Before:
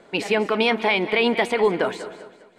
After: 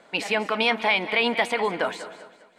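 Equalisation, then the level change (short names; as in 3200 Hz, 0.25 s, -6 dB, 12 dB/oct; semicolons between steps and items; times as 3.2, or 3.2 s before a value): low shelf 200 Hz -11.5 dB; bell 390 Hz -9.5 dB 0.38 oct; 0.0 dB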